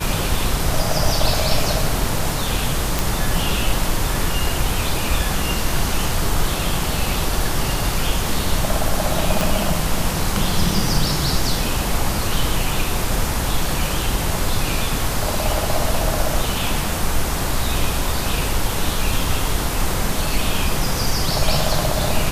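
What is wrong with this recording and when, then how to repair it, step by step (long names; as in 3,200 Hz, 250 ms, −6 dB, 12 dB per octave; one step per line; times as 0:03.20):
0:02.99: click
0:09.41: click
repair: click removal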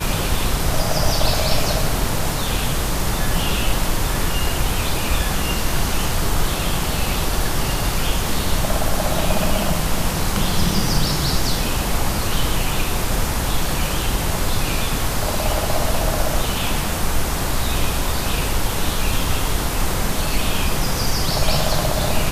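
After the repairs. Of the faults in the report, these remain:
0:09.41: click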